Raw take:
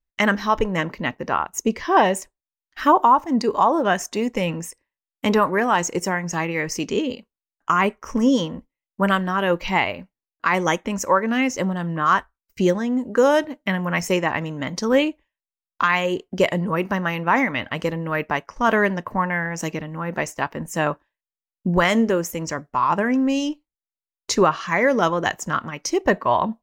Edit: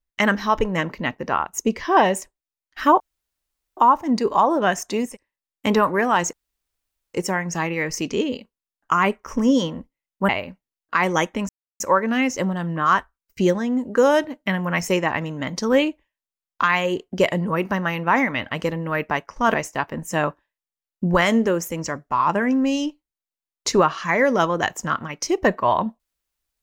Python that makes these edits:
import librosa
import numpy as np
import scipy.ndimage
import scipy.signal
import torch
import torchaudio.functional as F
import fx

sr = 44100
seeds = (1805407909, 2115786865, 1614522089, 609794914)

y = fx.edit(x, sr, fx.insert_room_tone(at_s=3.0, length_s=0.77),
    fx.cut(start_s=4.32, length_s=0.36, crossfade_s=0.16),
    fx.insert_room_tone(at_s=5.92, length_s=0.81),
    fx.cut(start_s=9.07, length_s=0.73),
    fx.insert_silence(at_s=11.0, length_s=0.31),
    fx.cut(start_s=18.74, length_s=1.43), tone=tone)